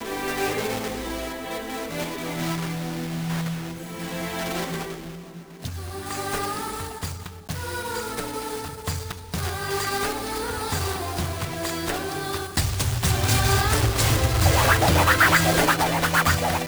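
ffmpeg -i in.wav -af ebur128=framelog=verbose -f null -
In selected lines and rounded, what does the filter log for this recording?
Integrated loudness:
  I:         -24.2 LUFS
  Threshold: -34.4 LUFS
Loudness range:
  LRA:        11.8 LU
  Threshold: -45.3 LUFS
  LRA low:   -30.9 LUFS
  LRA high:  -19.1 LUFS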